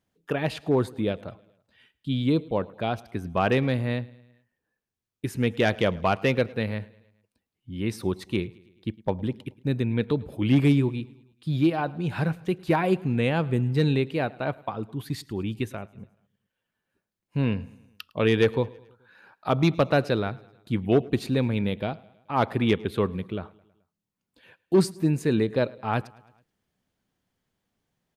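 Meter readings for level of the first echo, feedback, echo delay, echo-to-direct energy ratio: -23.5 dB, 57%, 107 ms, -22.0 dB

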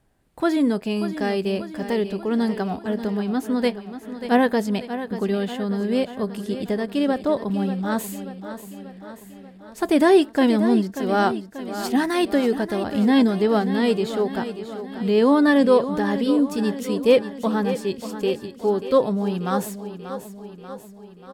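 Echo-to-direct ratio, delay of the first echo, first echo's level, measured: -9.5 dB, 587 ms, -11.5 dB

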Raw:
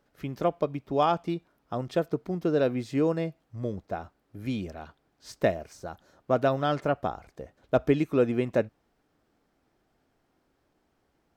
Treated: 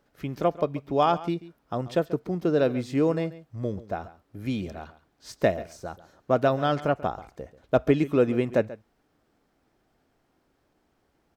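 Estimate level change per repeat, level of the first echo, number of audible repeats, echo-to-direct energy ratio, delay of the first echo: no regular repeats, -17.0 dB, 1, -17.0 dB, 137 ms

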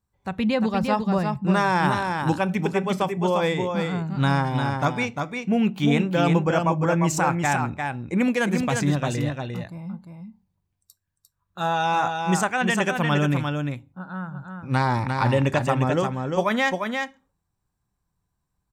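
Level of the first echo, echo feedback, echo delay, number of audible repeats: -5.0 dB, no regular repeats, 350 ms, 1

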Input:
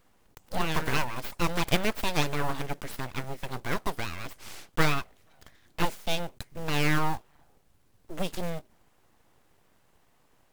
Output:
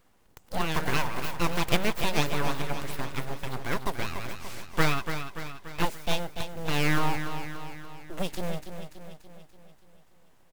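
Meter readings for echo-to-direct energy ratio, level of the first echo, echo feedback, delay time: -7.0 dB, -8.5 dB, 55%, 289 ms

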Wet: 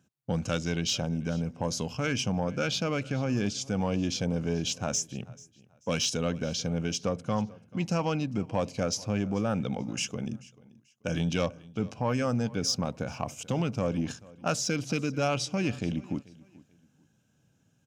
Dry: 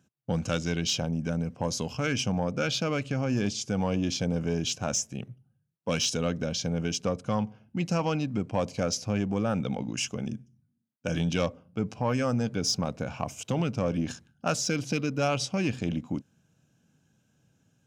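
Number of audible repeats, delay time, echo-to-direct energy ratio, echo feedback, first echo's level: 2, 437 ms, -21.5 dB, 27%, -22.0 dB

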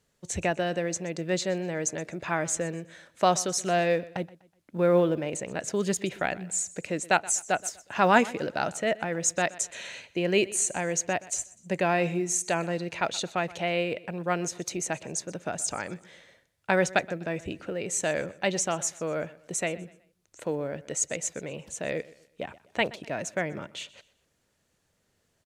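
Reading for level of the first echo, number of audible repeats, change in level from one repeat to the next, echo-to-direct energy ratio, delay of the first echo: -20.0 dB, 2, -9.0 dB, -19.5 dB, 124 ms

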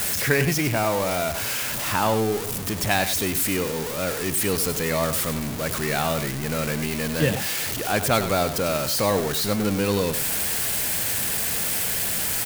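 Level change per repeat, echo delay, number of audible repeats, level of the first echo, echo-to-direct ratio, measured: no regular repeats, 99 ms, 1, -11.0 dB, -11.0 dB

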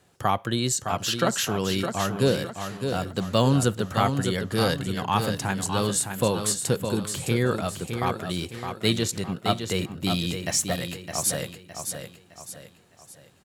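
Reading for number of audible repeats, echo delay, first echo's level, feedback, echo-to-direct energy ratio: 4, 612 ms, -7.0 dB, 40%, -6.0 dB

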